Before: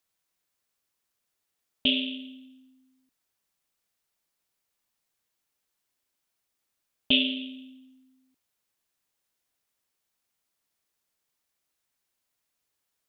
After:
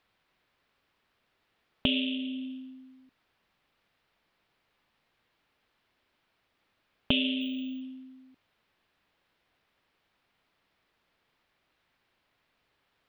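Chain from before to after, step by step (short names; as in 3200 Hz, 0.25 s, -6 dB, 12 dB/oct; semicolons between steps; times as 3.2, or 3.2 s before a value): high shelf 2200 Hz +6.5 dB; in parallel at +2 dB: limiter -12 dBFS, peak gain reduction 8.5 dB; on the sum: compressor 2:1, threshold -37 dBFS, peak gain reduction 15 dB; 7.41–7.81 careless resampling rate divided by 2×, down filtered, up zero stuff; air absorption 400 m; gain +7 dB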